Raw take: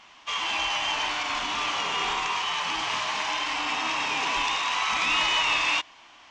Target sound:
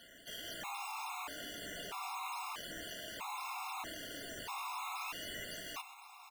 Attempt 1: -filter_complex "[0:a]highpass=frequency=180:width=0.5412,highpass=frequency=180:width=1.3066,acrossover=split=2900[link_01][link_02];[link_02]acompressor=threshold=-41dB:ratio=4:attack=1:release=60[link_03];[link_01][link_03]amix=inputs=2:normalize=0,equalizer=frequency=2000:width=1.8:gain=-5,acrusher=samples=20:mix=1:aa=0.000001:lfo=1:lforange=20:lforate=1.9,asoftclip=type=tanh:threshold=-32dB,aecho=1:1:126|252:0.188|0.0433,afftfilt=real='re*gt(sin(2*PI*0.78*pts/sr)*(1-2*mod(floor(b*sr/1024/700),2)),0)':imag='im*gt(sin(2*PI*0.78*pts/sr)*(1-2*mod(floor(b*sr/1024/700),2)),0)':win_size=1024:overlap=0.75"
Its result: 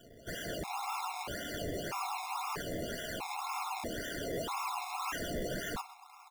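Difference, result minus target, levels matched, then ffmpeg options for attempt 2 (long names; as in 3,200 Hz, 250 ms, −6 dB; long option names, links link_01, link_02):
sample-and-hold swept by an LFO: distortion +17 dB; soft clipping: distortion −4 dB
-filter_complex "[0:a]highpass=frequency=180:width=0.5412,highpass=frequency=180:width=1.3066,acrossover=split=2900[link_01][link_02];[link_02]acompressor=threshold=-41dB:ratio=4:attack=1:release=60[link_03];[link_01][link_03]amix=inputs=2:normalize=0,equalizer=frequency=2000:width=1.8:gain=-5,acrusher=samples=6:mix=1:aa=0.000001:lfo=1:lforange=6:lforate=1.9,asoftclip=type=tanh:threshold=-39.5dB,aecho=1:1:126|252:0.188|0.0433,afftfilt=real='re*gt(sin(2*PI*0.78*pts/sr)*(1-2*mod(floor(b*sr/1024/700),2)),0)':imag='im*gt(sin(2*PI*0.78*pts/sr)*(1-2*mod(floor(b*sr/1024/700),2)),0)':win_size=1024:overlap=0.75"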